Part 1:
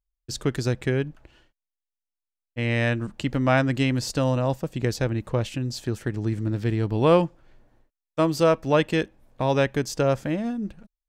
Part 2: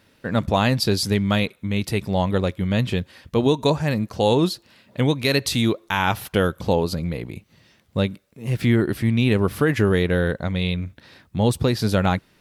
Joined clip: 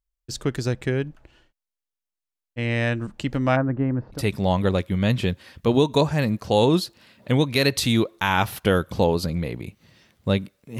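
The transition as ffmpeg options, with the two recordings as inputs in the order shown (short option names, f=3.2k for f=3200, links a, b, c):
-filter_complex "[0:a]asplit=3[a][b][c];[a]afade=t=out:st=3.55:d=0.02[d];[b]lowpass=f=1.4k:w=0.5412,lowpass=f=1.4k:w=1.3066,afade=t=in:st=3.55:d=0.02,afade=t=out:st=4.22:d=0.02[e];[c]afade=t=in:st=4.22:d=0.02[f];[d][e][f]amix=inputs=3:normalize=0,apad=whole_dur=10.79,atrim=end=10.79,atrim=end=4.22,asetpts=PTS-STARTPTS[g];[1:a]atrim=start=1.81:end=8.48,asetpts=PTS-STARTPTS[h];[g][h]acrossfade=d=0.1:c1=tri:c2=tri"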